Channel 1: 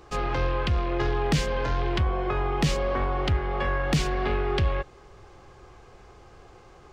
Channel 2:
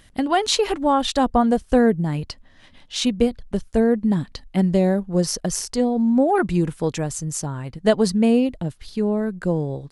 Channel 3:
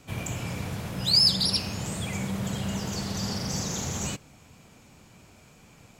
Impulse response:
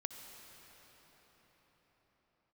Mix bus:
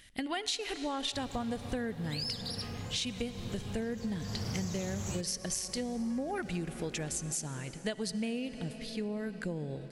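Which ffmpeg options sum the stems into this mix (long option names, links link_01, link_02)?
-filter_complex "[0:a]acompressor=threshold=-28dB:ratio=6,adelay=2500,volume=-18.5dB[link_01];[1:a]highshelf=frequency=1500:width_type=q:width=1.5:gain=8,volume=-14dB,asplit=2[link_02][link_03];[link_03]volume=-3dB[link_04];[2:a]equalizer=frequency=99:width_type=o:width=0.66:gain=10,adelay=1050,volume=-4dB,afade=type=in:start_time=4.25:duration=0.31:silence=0.316228[link_05];[3:a]atrim=start_sample=2205[link_06];[link_04][link_06]afir=irnorm=-1:irlink=0[link_07];[link_01][link_02][link_05][link_07]amix=inputs=4:normalize=0,acompressor=threshold=-32dB:ratio=6"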